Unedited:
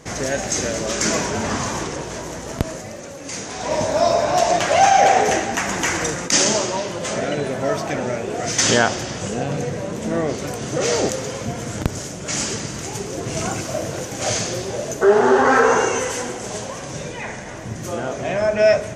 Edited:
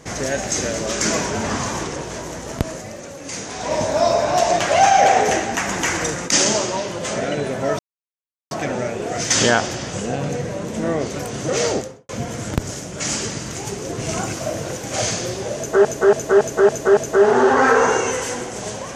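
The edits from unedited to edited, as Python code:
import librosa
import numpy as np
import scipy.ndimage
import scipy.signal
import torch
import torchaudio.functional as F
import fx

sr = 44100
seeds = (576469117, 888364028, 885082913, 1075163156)

y = fx.studio_fade_out(x, sr, start_s=10.91, length_s=0.46)
y = fx.edit(y, sr, fx.insert_silence(at_s=7.79, length_s=0.72),
    fx.repeat(start_s=14.85, length_s=0.28, count=6), tone=tone)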